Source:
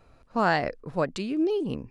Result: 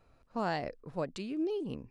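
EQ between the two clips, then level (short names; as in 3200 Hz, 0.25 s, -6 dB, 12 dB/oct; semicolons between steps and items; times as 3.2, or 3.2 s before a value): dynamic EQ 1500 Hz, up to -6 dB, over -36 dBFS, Q 1.2; -8.0 dB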